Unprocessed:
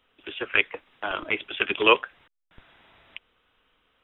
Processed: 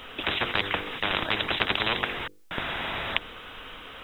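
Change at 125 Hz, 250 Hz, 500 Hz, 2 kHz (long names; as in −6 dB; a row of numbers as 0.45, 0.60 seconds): +11.5, −0.5, −5.5, −1.5 decibels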